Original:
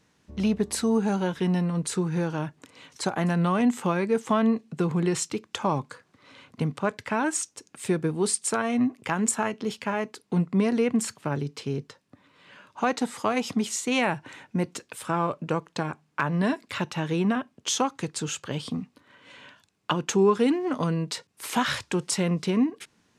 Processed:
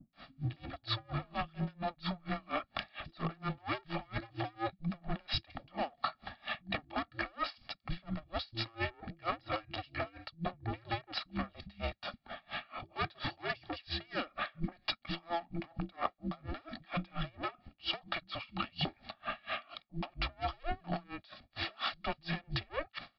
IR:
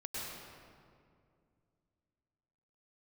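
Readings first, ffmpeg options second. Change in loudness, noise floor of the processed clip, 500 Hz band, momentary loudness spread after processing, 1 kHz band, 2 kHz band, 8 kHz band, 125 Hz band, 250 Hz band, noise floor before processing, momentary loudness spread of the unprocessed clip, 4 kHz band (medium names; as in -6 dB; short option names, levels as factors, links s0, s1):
-12.5 dB, -72 dBFS, -15.5 dB, 7 LU, -9.0 dB, -7.5 dB, under -40 dB, -11.5 dB, -17.5 dB, -68 dBFS, 9 LU, -4.0 dB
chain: -filter_complex "[0:a]aresample=11025,asoftclip=type=tanh:threshold=0.0422,aresample=44100,equalizer=f=500:t=o:w=0.41:g=-15,aecho=1:1:1.9:0.69,acrossover=split=480[s0][s1];[s1]adelay=130[s2];[s0][s2]amix=inputs=2:normalize=0,acontrast=79,alimiter=limit=0.0891:level=0:latency=1:release=32,bass=f=250:g=-9,treble=f=4000:g=2,areverse,acompressor=threshold=0.00631:ratio=8,areverse,afreqshift=-340,aeval=exprs='val(0)*pow(10,-31*(0.5-0.5*cos(2*PI*4.3*n/s))/20)':c=same,volume=5.01"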